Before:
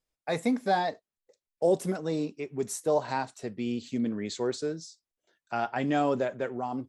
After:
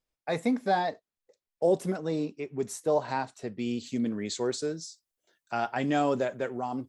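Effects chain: high shelf 5900 Hz -5.5 dB, from 3.59 s +7.5 dB

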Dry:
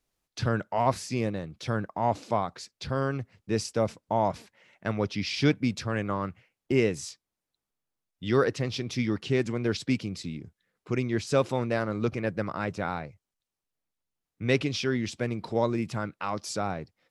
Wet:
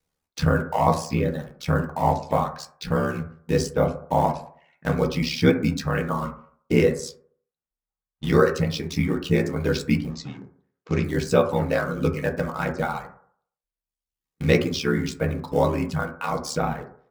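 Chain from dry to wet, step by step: in parallel at -6.5 dB: bit-crush 6-bit; 6.92–8.27 on the sum: low-pass opened by the level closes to 2200 Hz, open at -34.5 dBFS; 10.11–11.04 elliptic band-pass 120–6500 Hz; reverb removal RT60 1.1 s; ring modulator 36 Hz; on a send at -2 dB: reverb RT60 0.55 s, pre-delay 3 ms; on the sum: gain +3 dB

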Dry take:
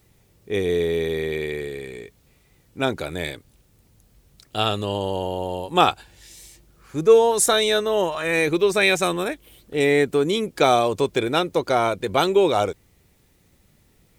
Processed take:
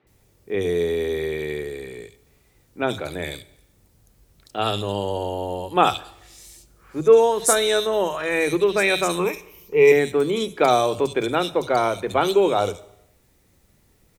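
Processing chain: 9.19–9.92 ripple EQ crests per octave 0.79, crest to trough 16 dB; three bands offset in time mids, lows, highs 40/70 ms, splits 170/3000 Hz; Schroeder reverb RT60 0.83 s, combs from 29 ms, DRR 17 dB

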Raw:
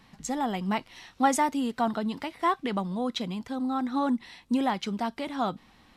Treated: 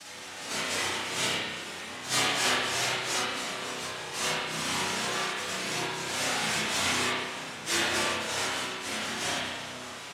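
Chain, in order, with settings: zero-crossing step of -30.5 dBFS; dynamic EQ 1300 Hz, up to -4 dB, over -43 dBFS, Q 3.5; flange 0.49 Hz, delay 6.6 ms, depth 4.1 ms, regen -3%; noise vocoder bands 1; chorus voices 4, 1.2 Hz, delay 21 ms, depth 3 ms; plain phase-vocoder stretch 1.7×; outdoor echo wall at 200 m, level -12 dB; spring tank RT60 1.3 s, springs 32/56 ms, chirp 45 ms, DRR -5.5 dB

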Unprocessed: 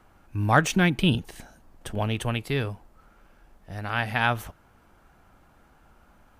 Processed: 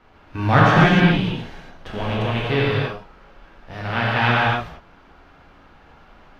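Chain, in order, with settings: spectral whitening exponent 0.6; 1.03–2.35 compressor, threshold -25 dBFS, peak gain reduction 9.5 dB; 3.72–4.21 crackle 370/s -35 dBFS; air absorption 260 m; non-linear reverb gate 0.31 s flat, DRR -6 dB; gain +2.5 dB

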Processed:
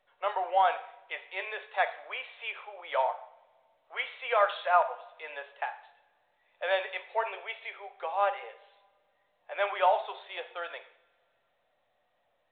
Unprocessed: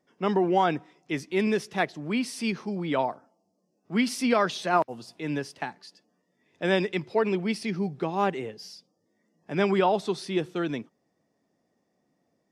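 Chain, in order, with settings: steep high-pass 540 Hz 48 dB/oct; high shelf 2600 Hz -6 dB; two-slope reverb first 0.57 s, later 2 s, from -22 dB, DRR 7.5 dB; µ-law 64 kbps 8000 Hz

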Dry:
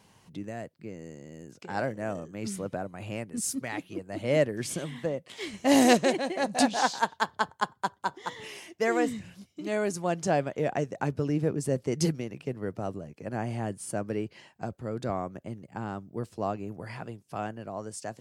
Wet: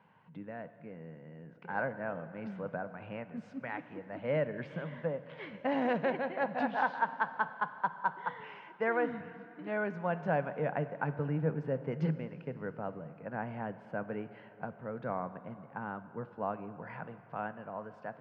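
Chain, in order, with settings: limiter -15.5 dBFS, peak gain reduction 8.5 dB; speaker cabinet 130–2600 Hz, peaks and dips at 160 Hz +7 dB, 350 Hz -8 dB, 500 Hz +4 dB, 940 Hz +7 dB, 1500 Hz +8 dB; plate-style reverb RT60 3.1 s, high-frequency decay 0.9×, DRR 12 dB; gain -6.5 dB

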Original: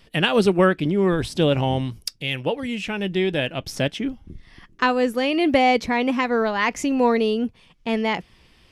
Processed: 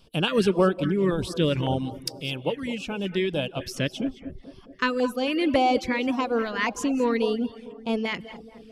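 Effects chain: non-linear reverb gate 0.24 s rising, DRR 12 dB; LFO notch square 1.8 Hz 770–1900 Hz; on a send: tape echo 0.219 s, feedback 79%, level -15.5 dB, low-pass 1400 Hz; on the sum: reverb removal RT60 0.5 s; gain -2.5 dB

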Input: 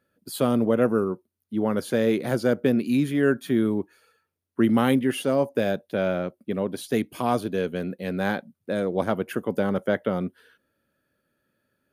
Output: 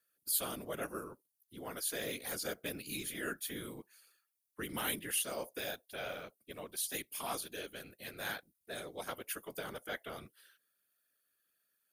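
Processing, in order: pre-emphasis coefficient 0.97; whisperiser; gain +2.5 dB

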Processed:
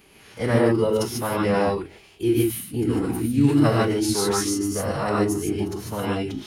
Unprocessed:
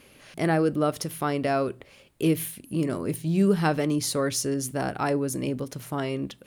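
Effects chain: non-linear reverb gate 0.17 s rising, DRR -2.5 dB; formant-preserving pitch shift -5.5 st

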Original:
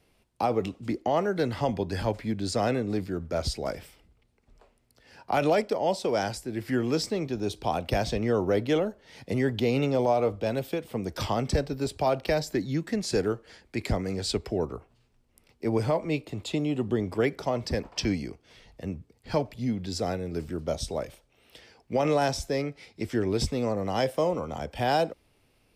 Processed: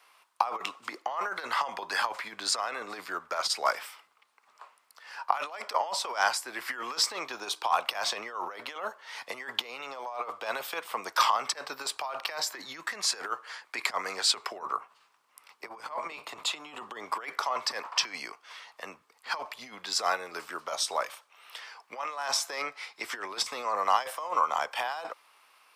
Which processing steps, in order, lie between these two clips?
14.58–16.75 octaver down 1 oct, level +3 dB; negative-ratio compressor -29 dBFS, ratio -0.5; resonant high-pass 1100 Hz, resonance Q 3.9; gain +3.5 dB

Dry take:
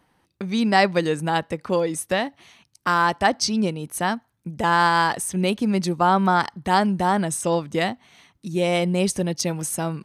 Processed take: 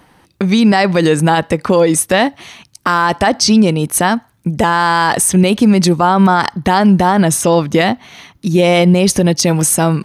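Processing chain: 6.52–9.26 bell 8200 Hz -9 dB 0.25 oct; maximiser +17 dB; gain -1.5 dB

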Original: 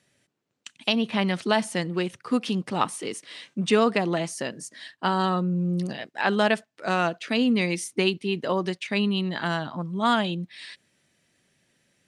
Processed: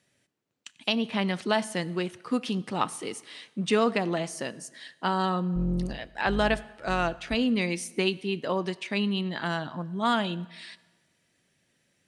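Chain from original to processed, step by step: 5.55–7.35 octaver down 2 oct, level -3 dB; reverb RT60 1.3 s, pre-delay 5 ms, DRR 17 dB; gain -3 dB

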